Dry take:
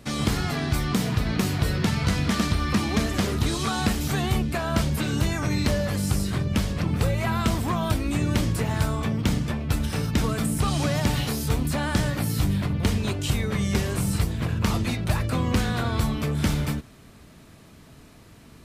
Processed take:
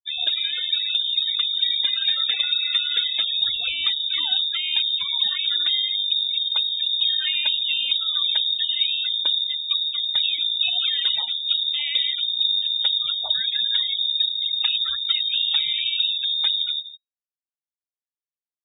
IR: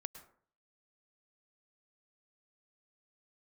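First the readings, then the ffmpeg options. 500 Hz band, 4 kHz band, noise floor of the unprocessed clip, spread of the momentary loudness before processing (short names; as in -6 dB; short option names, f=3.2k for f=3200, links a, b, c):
under -20 dB, +17.5 dB, -49 dBFS, 2 LU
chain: -filter_complex "[0:a]asplit=2[a][b];[b]adelay=168,lowpass=f=2.9k:p=1,volume=-12dB,asplit=2[c][d];[d]adelay=168,lowpass=f=2.9k:p=1,volume=0.22,asplit=2[e][f];[f]adelay=168,lowpass=f=2.9k:p=1,volume=0.22[g];[a][c][e][g]amix=inputs=4:normalize=0,afftfilt=real='re*gte(hypot(re,im),0.0708)':imag='im*gte(hypot(re,im),0.0708)':win_size=1024:overlap=0.75,lowpass=f=3.2k:t=q:w=0.5098,lowpass=f=3.2k:t=q:w=0.6013,lowpass=f=3.2k:t=q:w=0.9,lowpass=f=3.2k:t=q:w=2.563,afreqshift=-3800,volume=1dB"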